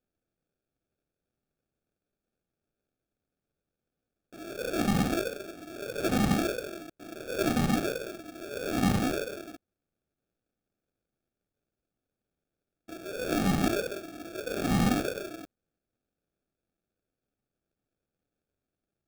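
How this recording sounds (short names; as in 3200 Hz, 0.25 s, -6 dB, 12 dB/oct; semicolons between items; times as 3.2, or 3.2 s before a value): aliases and images of a low sample rate 1000 Hz, jitter 0%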